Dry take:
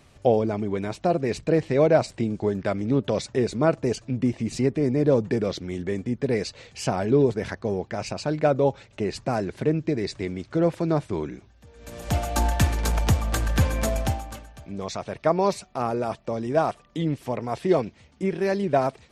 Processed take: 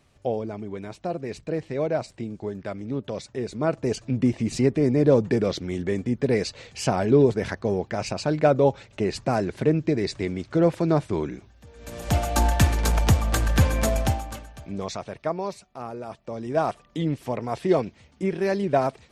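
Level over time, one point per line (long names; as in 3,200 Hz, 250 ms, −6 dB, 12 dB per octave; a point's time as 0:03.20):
0:03.38 −7 dB
0:04.09 +2 dB
0:14.76 +2 dB
0:15.50 −9 dB
0:16.04 −9 dB
0:16.70 0 dB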